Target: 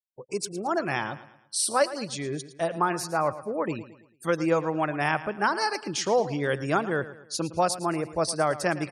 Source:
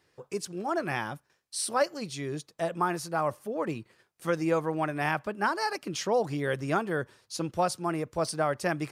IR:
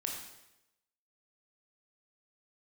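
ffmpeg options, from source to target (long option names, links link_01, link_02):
-af "afftfilt=real='re*gte(hypot(re,im),0.00447)':imag='im*gte(hypot(re,im),0.00447)':win_size=1024:overlap=0.75,bass=frequency=250:gain=-2,treble=frequency=4000:gain=3,aecho=1:1:111|222|333|444:0.178|0.0747|0.0314|0.0132,volume=3dB"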